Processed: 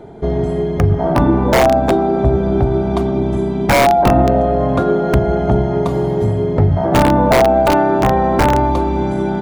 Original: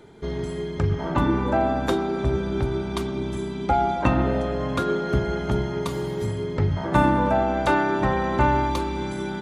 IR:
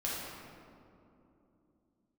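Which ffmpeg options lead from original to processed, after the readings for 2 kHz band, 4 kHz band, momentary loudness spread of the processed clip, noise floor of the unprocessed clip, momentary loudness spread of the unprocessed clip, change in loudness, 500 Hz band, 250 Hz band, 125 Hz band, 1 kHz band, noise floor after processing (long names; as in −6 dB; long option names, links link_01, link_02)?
+6.5 dB, +8.5 dB, 6 LU, −31 dBFS, 8 LU, +9.5 dB, +11.0 dB, +9.0 dB, +9.5 dB, +8.5 dB, −19 dBFS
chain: -filter_complex "[0:a]equalizer=frequency=700:width=3.8:gain=12,asplit=2[link_01][link_02];[link_02]acompressor=threshold=-24dB:ratio=10,volume=1dB[link_03];[link_01][link_03]amix=inputs=2:normalize=0,aeval=exprs='(mod(2*val(0)+1,2)-1)/2':channel_layout=same,tiltshelf=frequency=1300:gain=7,volume=-1dB"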